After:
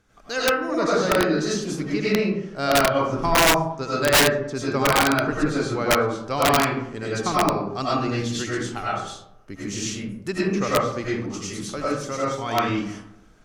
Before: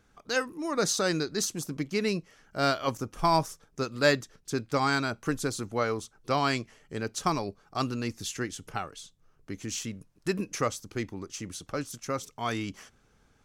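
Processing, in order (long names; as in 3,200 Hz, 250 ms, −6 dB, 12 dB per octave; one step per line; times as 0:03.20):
comb and all-pass reverb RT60 0.78 s, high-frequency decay 0.45×, pre-delay 60 ms, DRR −8 dB
treble cut that deepens with the level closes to 2,800 Hz, closed at −16 dBFS
wrap-around overflow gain 10 dB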